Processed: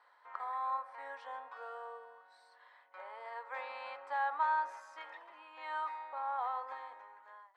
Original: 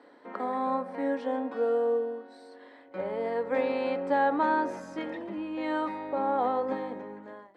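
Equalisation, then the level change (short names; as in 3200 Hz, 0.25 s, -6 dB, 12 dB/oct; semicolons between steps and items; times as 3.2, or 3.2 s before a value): ladder high-pass 860 Hz, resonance 45%; 0.0 dB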